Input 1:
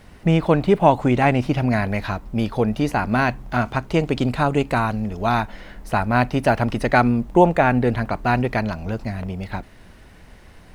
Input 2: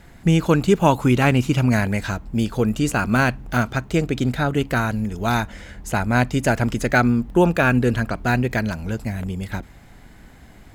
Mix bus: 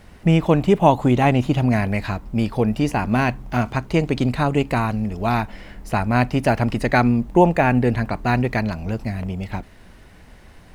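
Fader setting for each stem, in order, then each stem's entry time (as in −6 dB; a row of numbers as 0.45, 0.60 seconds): −0.5, −11.5 decibels; 0.00, 0.00 seconds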